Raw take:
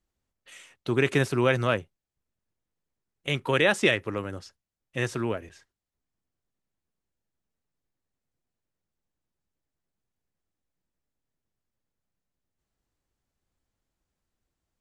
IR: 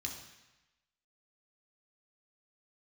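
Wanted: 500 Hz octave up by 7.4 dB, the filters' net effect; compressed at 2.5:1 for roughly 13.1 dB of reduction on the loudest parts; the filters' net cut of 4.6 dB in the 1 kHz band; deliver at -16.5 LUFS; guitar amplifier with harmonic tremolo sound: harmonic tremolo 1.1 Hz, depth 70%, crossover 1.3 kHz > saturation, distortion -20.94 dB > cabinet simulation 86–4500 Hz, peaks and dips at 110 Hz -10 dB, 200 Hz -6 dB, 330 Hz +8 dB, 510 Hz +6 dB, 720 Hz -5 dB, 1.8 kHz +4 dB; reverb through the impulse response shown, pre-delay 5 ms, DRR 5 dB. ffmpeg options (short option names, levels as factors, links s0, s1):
-filter_complex "[0:a]equalizer=f=500:t=o:g=5.5,equalizer=f=1000:t=o:g=-7,acompressor=threshold=0.0158:ratio=2.5,asplit=2[s0][s1];[1:a]atrim=start_sample=2205,adelay=5[s2];[s1][s2]afir=irnorm=-1:irlink=0,volume=0.596[s3];[s0][s3]amix=inputs=2:normalize=0,acrossover=split=1300[s4][s5];[s4]aeval=exprs='val(0)*(1-0.7/2+0.7/2*cos(2*PI*1.1*n/s))':c=same[s6];[s5]aeval=exprs='val(0)*(1-0.7/2-0.7/2*cos(2*PI*1.1*n/s))':c=same[s7];[s6][s7]amix=inputs=2:normalize=0,asoftclip=threshold=0.0562,highpass=86,equalizer=f=110:t=q:w=4:g=-10,equalizer=f=200:t=q:w=4:g=-6,equalizer=f=330:t=q:w=4:g=8,equalizer=f=510:t=q:w=4:g=6,equalizer=f=720:t=q:w=4:g=-5,equalizer=f=1800:t=q:w=4:g=4,lowpass=f=4500:w=0.5412,lowpass=f=4500:w=1.3066,volume=10.6"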